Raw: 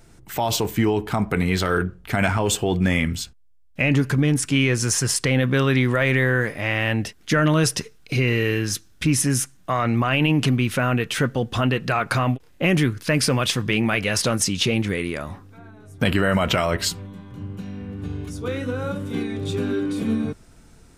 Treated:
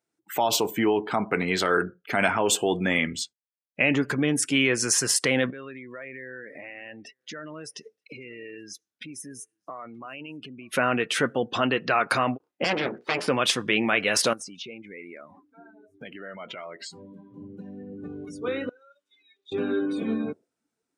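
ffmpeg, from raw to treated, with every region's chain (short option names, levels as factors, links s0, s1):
-filter_complex "[0:a]asettb=1/sr,asplit=3[s0][s1][s2];[s0]atrim=end=5.504[s3];[s1]atrim=start=5.5:end=10.73,asetpts=PTS-STARTPTS,afade=t=in:d=0.004:c=qsin,afade=t=out:st=5.226:d=0.004:c=qsin,acompressor=threshold=0.02:ratio=6:attack=3.2:release=140:knee=1:detection=peak,aecho=1:1:928:0.119,atrim=end_sample=230643[s4];[s2]atrim=start=10.726[s5];[s3][s4]acrossfade=d=0.004:c1=hsin:c2=qsin[s6];[s6][s5]acrossfade=d=0.004:c1=qsin:c2=hsin,asettb=1/sr,asplit=3[s7][s8][s9];[s7]atrim=end=12.644[s10];[s8]atrim=start=12.64:end=13.28,asetpts=PTS-STARTPTS,afade=t=in:d=0.004:c=qsin,afade=t=out:st=0.636:d=0.004:c=qsin,lowpass=3400,bandreject=f=60:t=h:w=6,bandreject=f=120:t=h:w=6,bandreject=f=180:t=h:w=6,bandreject=f=240:t=h:w=6,bandreject=f=300:t=h:w=6,bandreject=f=360:t=h:w=6,bandreject=f=420:t=h:w=6,bandreject=f=480:t=h:w=6,aeval=exprs='abs(val(0))':c=same[s11];[s9]atrim=start=13.276[s12];[s10][s11]acrossfade=d=0.004:c1=hsin:c2=qsin[s13];[s13][s12]acrossfade=d=0.004:c1=qsin:c2=hsin,asettb=1/sr,asplit=3[s14][s15][s16];[s14]atrim=end=14.334[s17];[s15]atrim=start=14.33:end=16.93,asetpts=PTS-STARTPTS,afade=t=in:d=0.004:c=qsin,afade=t=out:st=2.596:d=0.004:c=qsin,adynamicequalizer=threshold=0.00631:dfrequency=2100:dqfactor=7.8:tfrequency=2100:tqfactor=7.8:attack=5:release=100:ratio=0.375:range=2.5:mode=boostabove:tftype=bell,acompressor=threshold=0.0158:ratio=4:attack=3.2:release=140:knee=1:detection=peak[s18];[s16]atrim=start=16.926[s19];[s17][s18]acrossfade=d=0.004:c1=hsin:c2=qsin[s20];[s20][s19]acrossfade=d=0.004:c1=qsin:c2=hsin,asettb=1/sr,asplit=3[s21][s22][s23];[s21]atrim=end=18.694[s24];[s22]atrim=start=18.69:end=19.52,asetpts=PTS-STARTPTS,afade=t=in:d=0.004:c=qsin,afade=t=out:st=0.826:d=0.004:c=qsin,acompressor=threshold=0.0501:ratio=6:attack=3.2:release=140:knee=1:detection=peak,bandpass=f=5800:t=q:w=1.1,highshelf=f=5100:g=-5.5[s25];[s23]atrim=start=19.516[s26];[s24][s25]acrossfade=d=0.004:c1=hsin:c2=qsin[s27];[s27][s26]acrossfade=d=0.004:c1=qsin:c2=hsin,highpass=280,afftdn=nr=28:nf=-40"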